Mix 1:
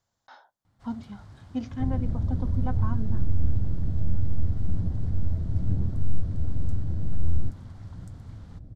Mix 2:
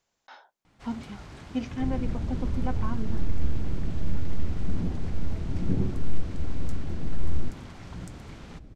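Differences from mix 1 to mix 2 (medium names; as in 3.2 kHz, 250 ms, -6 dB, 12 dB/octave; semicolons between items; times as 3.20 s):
first sound +7.5 dB; master: add fifteen-band graphic EQ 100 Hz -11 dB, 400 Hz +6 dB, 2.5 kHz +10 dB, 6.3 kHz +3 dB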